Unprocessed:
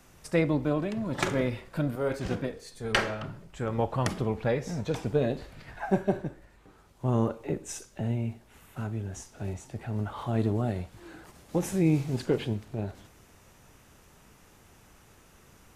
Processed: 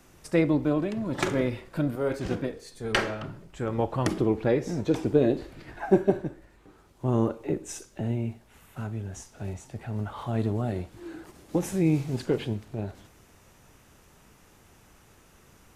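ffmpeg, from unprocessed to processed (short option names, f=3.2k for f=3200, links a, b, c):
-af "asetnsamples=n=441:p=0,asendcmd='4.06 equalizer g 13;6.1 equalizer g 5.5;8.32 equalizer g -1.5;10.72 equalizer g 9;11.56 equalizer g 1',equalizer=f=330:t=o:w=0.6:g=5"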